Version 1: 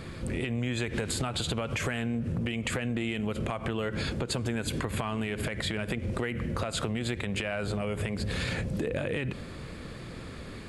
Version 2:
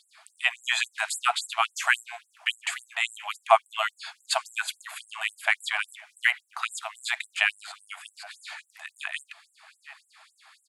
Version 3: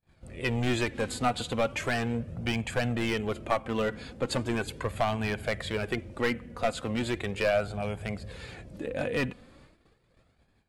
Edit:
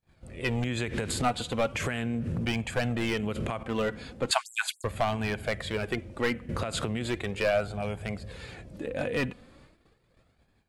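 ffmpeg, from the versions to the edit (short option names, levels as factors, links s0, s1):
-filter_complex "[0:a]asplit=4[s0][s1][s2][s3];[2:a]asplit=6[s4][s5][s6][s7][s8][s9];[s4]atrim=end=0.642[s10];[s0]atrim=start=0.638:end=1.222[s11];[s5]atrim=start=1.218:end=1.752[s12];[s1]atrim=start=1.748:end=2.452[s13];[s6]atrim=start=2.448:end=3.212[s14];[s2]atrim=start=3.208:end=3.632[s15];[s7]atrim=start=3.628:end=4.312[s16];[1:a]atrim=start=4.308:end=4.842[s17];[s8]atrim=start=4.838:end=6.492[s18];[s3]atrim=start=6.488:end=7.062[s19];[s9]atrim=start=7.058[s20];[s10][s11]acrossfade=d=0.004:c1=hsin:c2=hsin[s21];[s21][s12]acrossfade=d=0.004:c1=hsin:c2=hsin[s22];[s22][s13]acrossfade=d=0.004:c1=hsin:c2=hsin[s23];[s23][s14]acrossfade=d=0.004:c1=hsin:c2=hsin[s24];[s24][s15]acrossfade=d=0.004:c1=hsin:c2=hsin[s25];[s25][s16]acrossfade=d=0.004:c1=hsin:c2=hsin[s26];[s26][s17]acrossfade=d=0.004:c1=hsin:c2=hsin[s27];[s27][s18]acrossfade=d=0.004:c1=hsin:c2=hsin[s28];[s28][s19]acrossfade=d=0.004:c1=hsin:c2=hsin[s29];[s29][s20]acrossfade=d=0.004:c1=hsin:c2=hsin"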